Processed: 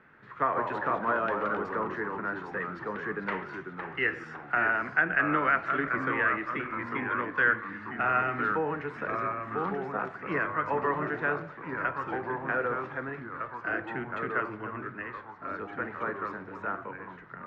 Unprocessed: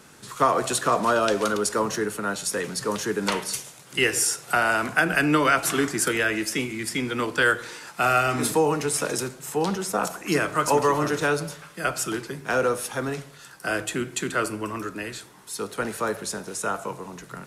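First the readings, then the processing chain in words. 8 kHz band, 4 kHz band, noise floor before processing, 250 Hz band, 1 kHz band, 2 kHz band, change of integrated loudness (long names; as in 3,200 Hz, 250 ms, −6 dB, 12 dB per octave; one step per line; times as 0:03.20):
below −40 dB, −20.5 dB, −48 dBFS, −8.0 dB, −4.0 dB, −2.5 dB, −6.0 dB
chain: transistor ladder low-pass 2,100 Hz, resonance 55%
delay with pitch and tempo change per echo 106 ms, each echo −2 semitones, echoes 3, each echo −6 dB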